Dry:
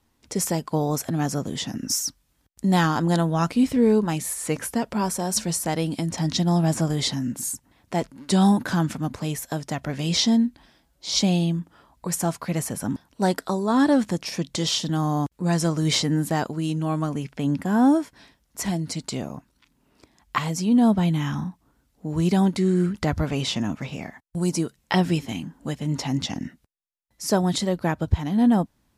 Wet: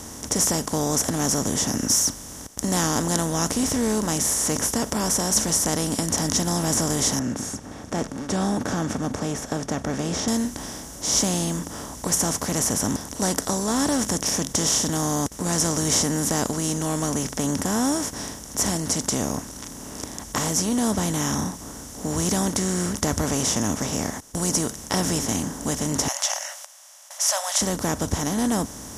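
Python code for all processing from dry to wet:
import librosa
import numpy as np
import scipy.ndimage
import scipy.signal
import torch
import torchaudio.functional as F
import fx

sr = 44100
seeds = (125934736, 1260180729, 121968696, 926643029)

y = fx.chain(x, sr, fx.lowpass(hz=1900.0, slope=12),
    fx.notch_comb(f0_hz=1000.0), at=(7.19, 10.28))
y = fx.chain(y, sr, fx.brickwall_highpass(low_hz=550.0),
    fx.peak_eq(hz=2900.0, db=11.0, octaves=1.4),
    fx.notch(hz=3700.0, q=25.0), at=(26.08, 27.62))
y = fx.bin_compress(y, sr, power=0.4)
y = fx.high_shelf_res(y, sr, hz=5000.0, db=6.5, q=3.0)
y = F.gain(torch.from_numpy(y), -8.5).numpy()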